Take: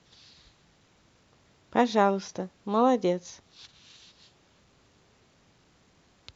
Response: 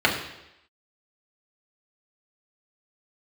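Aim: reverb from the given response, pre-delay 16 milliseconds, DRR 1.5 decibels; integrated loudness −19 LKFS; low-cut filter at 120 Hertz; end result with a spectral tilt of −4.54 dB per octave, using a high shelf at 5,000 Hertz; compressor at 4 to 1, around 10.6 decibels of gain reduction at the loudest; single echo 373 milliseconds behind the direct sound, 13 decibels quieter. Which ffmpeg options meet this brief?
-filter_complex "[0:a]highpass=120,highshelf=frequency=5000:gain=7,acompressor=threshold=-29dB:ratio=4,aecho=1:1:373:0.224,asplit=2[link_01][link_02];[1:a]atrim=start_sample=2205,adelay=16[link_03];[link_02][link_03]afir=irnorm=-1:irlink=0,volume=-20dB[link_04];[link_01][link_04]amix=inputs=2:normalize=0,volume=15dB"

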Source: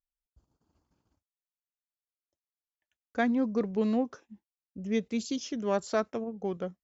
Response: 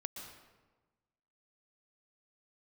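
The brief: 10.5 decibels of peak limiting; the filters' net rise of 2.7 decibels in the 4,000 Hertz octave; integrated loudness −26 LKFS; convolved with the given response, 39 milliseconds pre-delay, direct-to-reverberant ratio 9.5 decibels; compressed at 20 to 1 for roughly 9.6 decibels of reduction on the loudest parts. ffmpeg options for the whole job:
-filter_complex "[0:a]equalizer=frequency=4000:width_type=o:gain=3.5,acompressor=threshold=-32dB:ratio=20,alimiter=level_in=10dB:limit=-24dB:level=0:latency=1,volume=-10dB,asplit=2[link_01][link_02];[1:a]atrim=start_sample=2205,adelay=39[link_03];[link_02][link_03]afir=irnorm=-1:irlink=0,volume=-8dB[link_04];[link_01][link_04]amix=inputs=2:normalize=0,volume=16dB"

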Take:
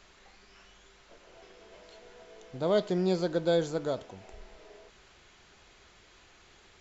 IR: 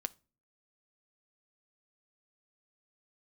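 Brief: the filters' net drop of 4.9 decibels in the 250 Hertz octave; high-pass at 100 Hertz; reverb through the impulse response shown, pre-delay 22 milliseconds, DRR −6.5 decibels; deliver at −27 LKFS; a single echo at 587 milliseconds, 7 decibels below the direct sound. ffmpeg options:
-filter_complex "[0:a]highpass=100,equalizer=frequency=250:width_type=o:gain=-8.5,aecho=1:1:587:0.447,asplit=2[link_01][link_02];[1:a]atrim=start_sample=2205,adelay=22[link_03];[link_02][link_03]afir=irnorm=-1:irlink=0,volume=7.5dB[link_04];[link_01][link_04]amix=inputs=2:normalize=0,volume=-3dB"

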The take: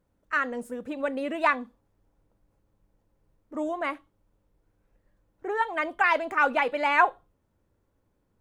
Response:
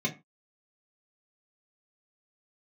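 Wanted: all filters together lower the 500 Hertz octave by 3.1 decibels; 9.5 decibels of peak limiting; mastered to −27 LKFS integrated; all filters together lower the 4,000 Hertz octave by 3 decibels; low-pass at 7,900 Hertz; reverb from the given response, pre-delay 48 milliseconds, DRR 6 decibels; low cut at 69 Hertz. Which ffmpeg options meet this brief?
-filter_complex "[0:a]highpass=69,lowpass=7900,equalizer=frequency=500:width_type=o:gain=-4,equalizer=frequency=4000:width_type=o:gain=-4.5,alimiter=limit=-18dB:level=0:latency=1,asplit=2[link_01][link_02];[1:a]atrim=start_sample=2205,adelay=48[link_03];[link_02][link_03]afir=irnorm=-1:irlink=0,volume=-13dB[link_04];[link_01][link_04]amix=inputs=2:normalize=0,volume=3dB"

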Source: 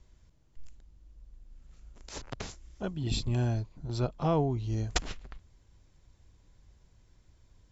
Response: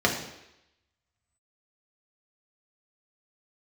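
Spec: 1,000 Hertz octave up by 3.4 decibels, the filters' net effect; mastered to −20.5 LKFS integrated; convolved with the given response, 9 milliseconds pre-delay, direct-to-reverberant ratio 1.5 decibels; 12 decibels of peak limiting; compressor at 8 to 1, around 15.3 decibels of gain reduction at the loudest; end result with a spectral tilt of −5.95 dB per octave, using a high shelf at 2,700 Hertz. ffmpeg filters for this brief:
-filter_complex "[0:a]equalizer=frequency=1000:width_type=o:gain=4,highshelf=frequency=2700:gain=4,acompressor=threshold=-38dB:ratio=8,alimiter=level_in=11dB:limit=-24dB:level=0:latency=1,volume=-11dB,asplit=2[link_01][link_02];[1:a]atrim=start_sample=2205,adelay=9[link_03];[link_02][link_03]afir=irnorm=-1:irlink=0,volume=-16.5dB[link_04];[link_01][link_04]amix=inputs=2:normalize=0,volume=21.5dB"

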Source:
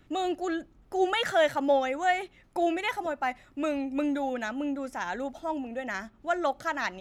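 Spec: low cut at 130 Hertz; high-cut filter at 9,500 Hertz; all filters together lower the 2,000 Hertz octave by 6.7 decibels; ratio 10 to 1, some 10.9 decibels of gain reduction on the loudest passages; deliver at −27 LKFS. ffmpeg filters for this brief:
ffmpeg -i in.wav -af "highpass=130,lowpass=9500,equalizer=frequency=2000:width_type=o:gain=-8.5,acompressor=threshold=-31dB:ratio=10,volume=9.5dB" out.wav

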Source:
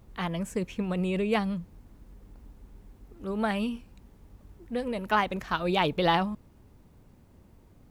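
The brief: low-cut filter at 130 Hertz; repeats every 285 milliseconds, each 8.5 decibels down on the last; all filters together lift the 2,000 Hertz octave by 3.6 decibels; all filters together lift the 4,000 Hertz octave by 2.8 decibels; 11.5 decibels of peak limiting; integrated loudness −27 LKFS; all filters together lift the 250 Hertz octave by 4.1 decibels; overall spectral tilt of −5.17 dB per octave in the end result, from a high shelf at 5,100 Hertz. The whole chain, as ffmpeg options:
ffmpeg -i in.wav -af "highpass=130,equalizer=frequency=250:width_type=o:gain=6.5,equalizer=frequency=2000:width_type=o:gain=4.5,equalizer=frequency=4000:width_type=o:gain=4,highshelf=frequency=5100:gain=-6,alimiter=limit=-18.5dB:level=0:latency=1,aecho=1:1:285|570|855|1140:0.376|0.143|0.0543|0.0206,volume=2.5dB" out.wav

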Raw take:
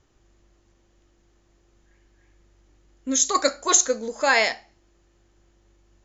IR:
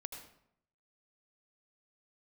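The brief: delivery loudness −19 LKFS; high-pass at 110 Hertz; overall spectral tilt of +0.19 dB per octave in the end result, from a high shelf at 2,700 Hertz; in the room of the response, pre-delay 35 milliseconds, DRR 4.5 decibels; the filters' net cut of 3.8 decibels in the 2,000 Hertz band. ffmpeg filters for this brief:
-filter_complex "[0:a]highpass=110,equalizer=frequency=2000:width_type=o:gain=-3.5,highshelf=frequency=2700:gain=-3,asplit=2[link_01][link_02];[1:a]atrim=start_sample=2205,adelay=35[link_03];[link_02][link_03]afir=irnorm=-1:irlink=0,volume=-2dB[link_04];[link_01][link_04]amix=inputs=2:normalize=0,volume=3dB"

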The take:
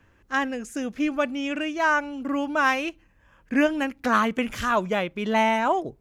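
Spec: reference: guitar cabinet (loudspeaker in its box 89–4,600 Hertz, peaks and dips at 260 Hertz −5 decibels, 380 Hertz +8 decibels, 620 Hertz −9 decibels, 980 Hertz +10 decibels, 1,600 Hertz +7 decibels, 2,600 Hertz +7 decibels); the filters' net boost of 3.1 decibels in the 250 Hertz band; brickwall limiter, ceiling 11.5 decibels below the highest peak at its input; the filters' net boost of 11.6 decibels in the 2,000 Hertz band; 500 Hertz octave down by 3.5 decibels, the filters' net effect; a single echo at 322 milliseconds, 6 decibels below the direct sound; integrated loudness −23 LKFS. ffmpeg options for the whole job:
ffmpeg -i in.wav -af "equalizer=frequency=250:width_type=o:gain=7,equalizer=frequency=500:width_type=o:gain=-5.5,equalizer=frequency=2000:width_type=o:gain=7.5,alimiter=limit=-16dB:level=0:latency=1,highpass=89,equalizer=frequency=260:width_type=q:width=4:gain=-5,equalizer=frequency=380:width_type=q:width=4:gain=8,equalizer=frequency=620:width_type=q:width=4:gain=-9,equalizer=frequency=980:width_type=q:width=4:gain=10,equalizer=frequency=1600:width_type=q:width=4:gain=7,equalizer=frequency=2600:width_type=q:width=4:gain=7,lowpass=frequency=4600:width=0.5412,lowpass=frequency=4600:width=1.3066,aecho=1:1:322:0.501,volume=-2dB" out.wav

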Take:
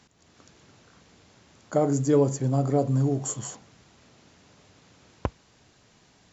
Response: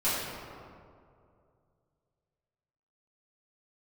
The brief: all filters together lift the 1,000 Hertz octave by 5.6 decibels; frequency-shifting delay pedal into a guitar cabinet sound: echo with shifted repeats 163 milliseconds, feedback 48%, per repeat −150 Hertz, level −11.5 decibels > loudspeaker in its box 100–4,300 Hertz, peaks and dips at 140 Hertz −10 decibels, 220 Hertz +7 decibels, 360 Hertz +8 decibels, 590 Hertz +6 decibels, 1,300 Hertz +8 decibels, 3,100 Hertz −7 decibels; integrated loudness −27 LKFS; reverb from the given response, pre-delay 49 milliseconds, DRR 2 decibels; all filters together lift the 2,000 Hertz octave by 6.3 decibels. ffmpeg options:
-filter_complex "[0:a]equalizer=frequency=1000:width_type=o:gain=4,equalizer=frequency=2000:width_type=o:gain=3.5,asplit=2[link_01][link_02];[1:a]atrim=start_sample=2205,adelay=49[link_03];[link_02][link_03]afir=irnorm=-1:irlink=0,volume=-13.5dB[link_04];[link_01][link_04]amix=inputs=2:normalize=0,asplit=6[link_05][link_06][link_07][link_08][link_09][link_10];[link_06]adelay=163,afreqshift=-150,volume=-11.5dB[link_11];[link_07]adelay=326,afreqshift=-300,volume=-17.9dB[link_12];[link_08]adelay=489,afreqshift=-450,volume=-24.3dB[link_13];[link_09]adelay=652,afreqshift=-600,volume=-30.6dB[link_14];[link_10]adelay=815,afreqshift=-750,volume=-37dB[link_15];[link_05][link_11][link_12][link_13][link_14][link_15]amix=inputs=6:normalize=0,highpass=100,equalizer=frequency=140:width_type=q:width=4:gain=-10,equalizer=frequency=220:width_type=q:width=4:gain=7,equalizer=frequency=360:width_type=q:width=4:gain=8,equalizer=frequency=590:width_type=q:width=4:gain=6,equalizer=frequency=1300:width_type=q:width=4:gain=8,equalizer=frequency=3100:width_type=q:width=4:gain=-7,lowpass=frequency=4300:width=0.5412,lowpass=frequency=4300:width=1.3066,volume=-7dB"

